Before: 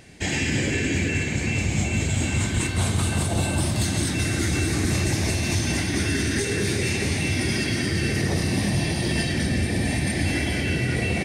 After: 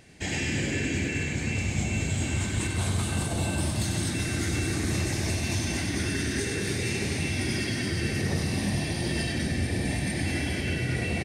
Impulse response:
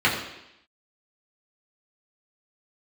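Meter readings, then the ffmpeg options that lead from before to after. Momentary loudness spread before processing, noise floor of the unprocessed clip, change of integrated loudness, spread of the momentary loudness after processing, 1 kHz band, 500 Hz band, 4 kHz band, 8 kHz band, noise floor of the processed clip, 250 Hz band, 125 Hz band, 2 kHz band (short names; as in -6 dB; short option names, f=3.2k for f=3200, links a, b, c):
1 LU, -27 dBFS, -4.5 dB, 1 LU, -4.5 dB, -5.0 dB, -4.5 dB, -4.5 dB, -31 dBFS, -4.5 dB, -4.5 dB, -4.5 dB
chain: -af "aecho=1:1:96:0.473,volume=-5.5dB"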